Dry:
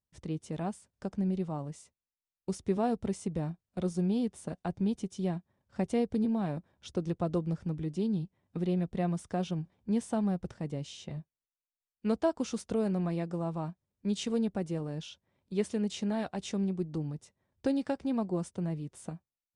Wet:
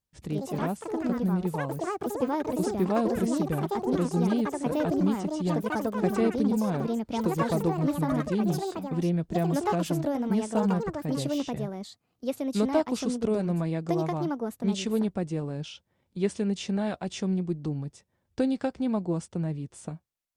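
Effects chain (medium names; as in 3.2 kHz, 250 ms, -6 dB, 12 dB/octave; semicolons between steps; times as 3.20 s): speed mistake 25 fps video run at 24 fps; ever faster or slower copies 121 ms, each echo +5 st, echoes 3; trim +3.5 dB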